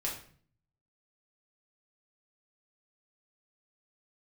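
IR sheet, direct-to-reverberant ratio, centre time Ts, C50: -3.5 dB, 30 ms, 6.0 dB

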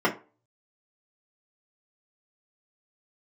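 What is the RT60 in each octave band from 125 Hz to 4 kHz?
0.30 s, 0.35 s, 0.35 s, 0.35 s, 0.25 s, 0.20 s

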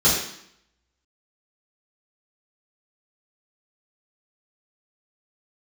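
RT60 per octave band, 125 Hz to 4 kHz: 0.65 s, 0.80 s, 0.65 s, 0.70 s, 0.70 s, 0.70 s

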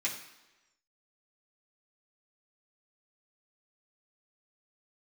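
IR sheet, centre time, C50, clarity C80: 25 ms, 8.0 dB, 10.5 dB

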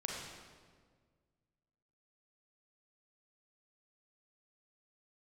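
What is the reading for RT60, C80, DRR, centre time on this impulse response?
1.7 s, 2.0 dB, -2.5 dB, 86 ms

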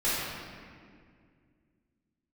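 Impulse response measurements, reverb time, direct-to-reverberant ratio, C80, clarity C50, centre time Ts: 2.1 s, -11.5 dB, -0.5 dB, -3.5 dB, 132 ms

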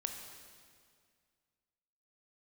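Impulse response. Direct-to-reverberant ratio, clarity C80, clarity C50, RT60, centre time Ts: 4.0 dB, 6.5 dB, 5.0 dB, 2.0 s, 47 ms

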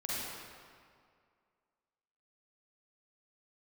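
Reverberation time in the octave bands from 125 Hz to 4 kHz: 2.0 s, 2.1 s, 2.1 s, 2.1 s, 1.8 s, 1.5 s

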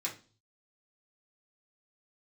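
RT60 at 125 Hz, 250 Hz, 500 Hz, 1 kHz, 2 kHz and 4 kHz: 0.80 s, 0.50 s, 0.40 s, 0.35 s, 0.30 s, 0.40 s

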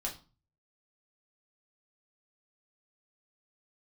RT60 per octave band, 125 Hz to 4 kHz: 0.65 s, 0.45 s, 0.35 s, 0.35 s, 0.30 s, 0.30 s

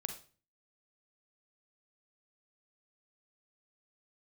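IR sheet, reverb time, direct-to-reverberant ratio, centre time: 0.40 s, 5.5 dB, 14 ms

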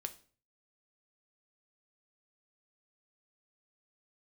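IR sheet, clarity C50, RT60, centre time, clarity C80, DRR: 15.5 dB, 0.45 s, 5 ms, 21.0 dB, 7.5 dB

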